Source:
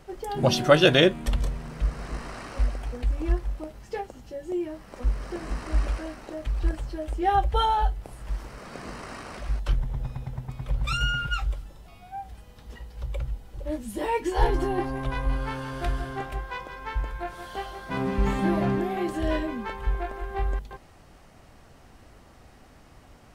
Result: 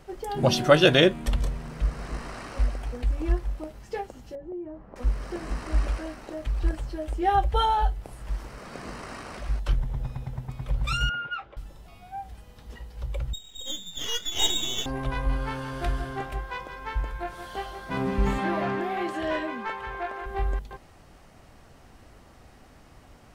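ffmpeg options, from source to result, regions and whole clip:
-filter_complex "[0:a]asettb=1/sr,asplit=3[a][b][c];[a]atrim=end=4.354[d];[b]atrim=start=4.35:end=4.96,asetpts=PTS-STARTPTS,afade=t=in:d=0.004:c=qsin,afade=t=out:st=0.606:d=0.004:c=qsin,lowpass=1k,acompressor=threshold=-36dB:ratio=2.5:attack=3.2:release=140:knee=1:detection=peak[e];[c]atrim=start=4.956[f];[d][e]acrossfade=d=0.004:c1=hsin:c2=qsin[g];[g][f]acrossfade=d=0.004:c1=qsin:c2=hsin,asettb=1/sr,asplit=3[h][i][j];[h]atrim=end=11.094[k];[i]atrim=start=11.09:end=11.57,asetpts=PTS-STARTPTS,afade=t=in:d=0.004:c=qsin,afade=t=out:st=0.476:d=0.004:c=qsin,highpass=320,lowpass=3k,aemphasis=mode=reproduction:type=75kf[l];[j]atrim=start=11.566[m];[k][l]acrossfade=d=0.004:c1=hsin:c2=qsin[n];[n][m]acrossfade=d=0.004:c1=qsin:c2=hsin,asettb=1/sr,asplit=3[o][p][q];[o]atrim=end=13.334[r];[p]atrim=start=13.33:end=14.86,asetpts=PTS-STARTPTS,afade=t=in:d=0.004:c=qsin,afade=t=out:st=1.526:d=0.004:c=qsin,lowpass=f=3.2k:t=q:w=0.5098,lowpass=f=3.2k:t=q:w=0.6013,lowpass=f=3.2k:t=q:w=0.9,lowpass=f=3.2k:t=q:w=2.563,afreqshift=-3800,aeval=exprs='max(val(0),0)':c=same[s];[q]atrim=start=14.856[t];[r][s]acrossfade=d=0.004:c1=hsin:c2=qsin[u];[u][t]acrossfade=d=0.004:c1=qsin:c2=hsin,asettb=1/sr,asplit=3[v][w][x];[v]atrim=end=18.384[y];[w]atrim=start=18.38:end=20.26,asetpts=PTS-STARTPTS,afade=t=in:d=0.004:c=qsin,afade=t=out:st=1.876:d=0.004:c=qsin,highpass=73,tiltshelf=f=1.1k:g=-4.5,asplit=2[z][aa];[aa]highpass=f=720:p=1,volume=13dB,asoftclip=type=tanh:threshold=-16dB[ab];[z][ab]amix=inputs=2:normalize=0,lowpass=f=1.2k:p=1,volume=-6dB[ac];[x]atrim=start=20.256[ad];[y][ac]acrossfade=d=0.004:c1=hsin:c2=qsin[ae];[ae][ad]acrossfade=d=0.004:c1=qsin:c2=hsin"

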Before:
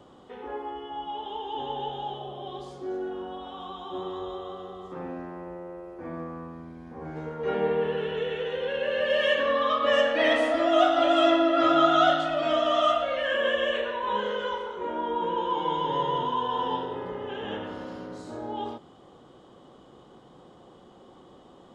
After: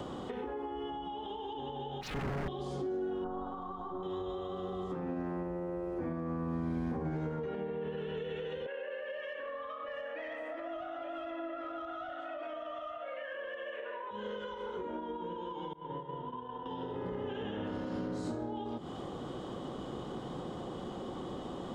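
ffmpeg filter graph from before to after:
-filter_complex "[0:a]asettb=1/sr,asplit=3[a][b][c];[a]atrim=end=2.014[d];[b]atrim=start=2.01:end=2.48,asetpts=PTS-STARTPTS,afade=t=in:d=0.004:c=qsin,afade=t=out:st=0.466:d=0.004:c=qsin,asuperstop=centerf=3600:order=4:qfactor=0.54,aecho=1:1:7.1:0.8,atrim=end_sample=20727,aeval=exprs='0.015*(abs(mod(val(0)/0.015+3,4)-2)-1)':c=same[e];[c]atrim=start=2.476[f];[d][e]acrossfade=d=0.004:c1=hsin:c2=qsin[g];[g][f]acrossfade=d=0.004:c1=qsin:c2=hsin,asettb=1/sr,asplit=3[h][i][j];[h]atrim=end=3.244[k];[i]atrim=start=3.24:end=4.03,asetpts=PTS-STARTPTS,afade=t=in:d=0.004:c=qsin,afade=t=out:st=0.786:d=0.004:c=qsin,aeval=exprs='if(lt(val(0),0),0.708*val(0),val(0))':c=same,highshelf=f=1.7k:t=q:w=3:g=-11[l];[j]atrim=start=4.026[m];[k][l]acrossfade=d=0.004:c1=hsin:c2=qsin[n];[n][m]acrossfade=d=0.004:c1=qsin:c2=hsin,asettb=1/sr,asplit=3[o][p][q];[o]atrim=end=8.664[r];[p]atrim=start=8.66:end=14.11,asetpts=PTS-STARTPTS,afade=t=in:d=0.004:c=qsin,afade=t=out:st=5.446:d=0.004:c=qsin,highpass=f=380:w=0.5412,highpass=f=380:w=1.3066,highshelf=f=3.1k:t=q:w=1.5:g=-11,acontrast=80[s];[q]atrim=start=14.106[t];[r][s]acrossfade=d=0.004:c1=hsin:c2=qsin[u];[u][t]acrossfade=d=0.004:c1=qsin:c2=hsin,asettb=1/sr,asplit=3[v][w][x];[v]atrim=end=15.734[y];[w]atrim=start=15.73:end=16.66,asetpts=PTS-STARTPTS,afade=t=in:d=0.004:c=qsin,afade=t=out:st=0.926:d=0.004:c=qsin,lowpass=2.3k,agate=range=-33dB:threshold=-18dB:ratio=3:release=100:detection=peak[z];[x]atrim=start=16.656[aa];[y][z]acrossfade=d=0.004:c1=hsin:c2=qsin[ab];[ab][aa]acrossfade=d=0.004:c1=qsin:c2=hsin,acompressor=threshold=-37dB:ratio=6,alimiter=level_in=14dB:limit=-24dB:level=0:latency=1:release=228,volume=-14dB,acrossover=split=340[ac][ad];[ad]acompressor=threshold=-57dB:ratio=3[ae];[ac][ae]amix=inputs=2:normalize=0,volume=13dB"

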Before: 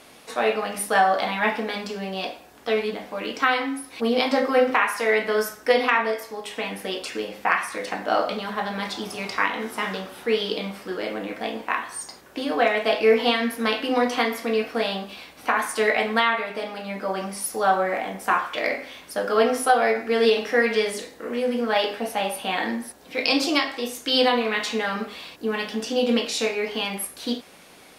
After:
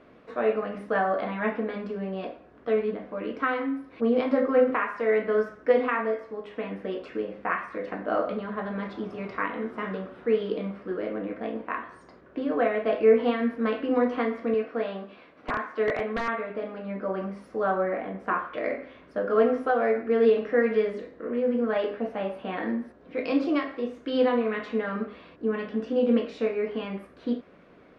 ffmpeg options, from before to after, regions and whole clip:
-filter_complex "[0:a]asettb=1/sr,asplit=3[a][b][c];[a]atrim=end=14.544[d];[b]atrim=start=14.54:end=16.28,asetpts=PTS-STARTPTS,afade=t=in:d=0.004:c=qsin,afade=t=out:st=1.736:d=0.004:c=qsin,acrossover=split=5600[e][f];[f]acompressor=threshold=-54dB:ratio=4:attack=1:release=60[g];[e][g]amix=inputs=2:normalize=0,highpass=f=320:p=1,aeval=exprs='(mod(3.55*val(0)+1,2)-1)/3.55':c=same[h];[c]atrim=start=16.276[i];[d][h]acrossfade=d=0.004:c1=hsin:c2=qsin[j];[j][i]acrossfade=d=0.004:c1=qsin:c2=hsin,lowpass=1.2k,equalizer=f=830:t=o:w=0.43:g=-11.5"

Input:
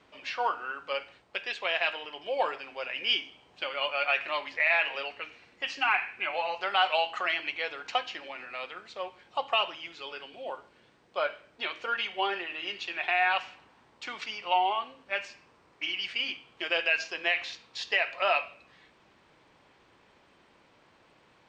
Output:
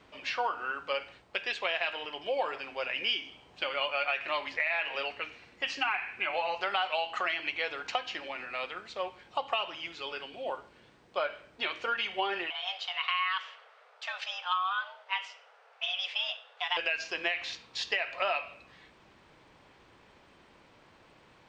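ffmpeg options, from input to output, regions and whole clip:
-filter_complex "[0:a]asettb=1/sr,asplit=3[a][b][c];[a]atrim=end=12.504[d];[b]atrim=start=12.5:end=16.77,asetpts=PTS-STARTPTS,afade=t=in:d=0.004:c=qsin,afade=t=out:st=4.266:d=0.004:c=qsin,aemphasis=mode=reproduction:type=50fm,afreqshift=370[e];[c]atrim=start=16.766[f];[d][e]acrossfade=d=0.004:c1=hsin:c2=qsin[g];[g][f]acrossfade=d=0.004:c1=qsin:c2=hsin,acompressor=threshold=-29dB:ratio=6,lowshelf=f=100:g=6.5,volume=2dB"

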